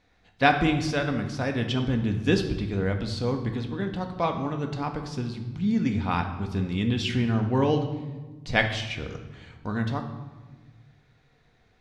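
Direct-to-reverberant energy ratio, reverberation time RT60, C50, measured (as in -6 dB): 4.0 dB, 1.3 s, 8.0 dB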